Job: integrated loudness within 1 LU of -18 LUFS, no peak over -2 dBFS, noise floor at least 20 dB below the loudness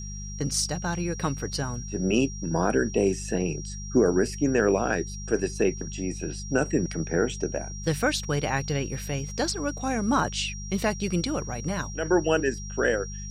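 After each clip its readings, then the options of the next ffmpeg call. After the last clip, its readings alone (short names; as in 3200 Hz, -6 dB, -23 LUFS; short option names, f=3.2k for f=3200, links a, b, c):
hum 50 Hz; harmonics up to 200 Hz; hum level -34 dBFS; steady tone 5700 Hz; tone level -40 dBFS; loudness -27.0 LUFS; peak -10.0 dBFS; loudness target -18.0 LUFS
-> -af "bandreject=f=50:t=h:w=4,bandreject=f=100:t=h:w=4,bandreject=f=150:t=h:w=4,bandreject=f=200:t=h:w=4"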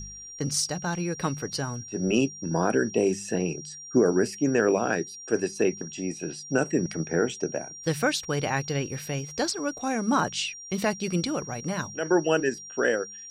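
hum none; steady tone 5700 Hz; tone level -40 dBFS
-> -af "bandreject=f=5.7k:w=30"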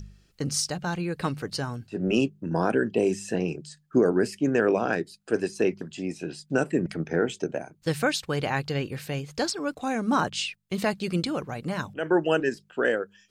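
steady tone none; loudness -27.5 LUFS; peak -10.5 dBFS; loudness target -18.0 LUFS
-> -af "volume=9.5dB,alimiter=limit=-2dB:level=0:latency=1"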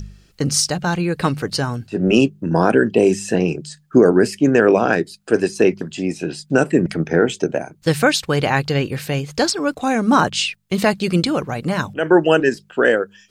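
loudness -18.0 LUFS; peak -2.0 dBFS; noise floor -55 dBFS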